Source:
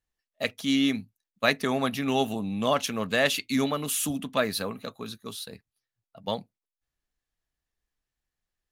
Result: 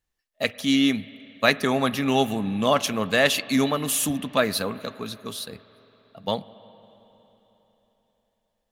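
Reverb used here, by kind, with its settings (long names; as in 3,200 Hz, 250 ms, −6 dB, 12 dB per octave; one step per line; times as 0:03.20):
spring reverb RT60 3.9 s, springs 45/57 ms, chirp 65 ms, DRR 16.5 dB
level +4 dB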